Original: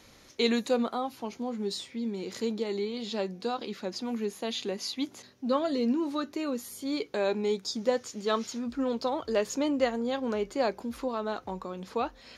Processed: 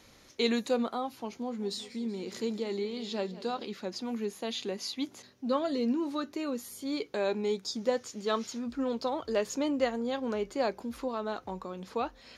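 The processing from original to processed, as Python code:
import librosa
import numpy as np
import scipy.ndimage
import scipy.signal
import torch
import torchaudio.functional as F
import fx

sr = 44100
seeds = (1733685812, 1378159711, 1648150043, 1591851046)

y = fx.echo_warbled(x, sr, ms=188, feedback_pct=63, rate_hz=2.8, cents=83, wet_db=-17, at=(1.37, 3.65))
y = y * librosa.db_to_amplitude(-2.0)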